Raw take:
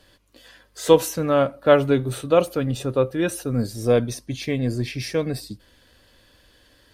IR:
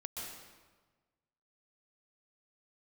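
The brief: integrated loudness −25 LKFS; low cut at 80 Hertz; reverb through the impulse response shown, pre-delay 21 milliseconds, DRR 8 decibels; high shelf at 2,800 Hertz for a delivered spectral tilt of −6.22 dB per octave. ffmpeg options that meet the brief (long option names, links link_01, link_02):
-filter_complex "[0:a]highpass=80,highshelf=frequency=2800:gain=-4.5,asplit=2[link_01][link_02];[1:a]atrim=start_sample=2205,adelay=21[link_03];[link_02][link_03]afir=irnorm=-1:irlink=0,volume=-7.5dB[link_04];[link_01][link_04]amix=inputs=2:normalize=0,volume=-3.5dB"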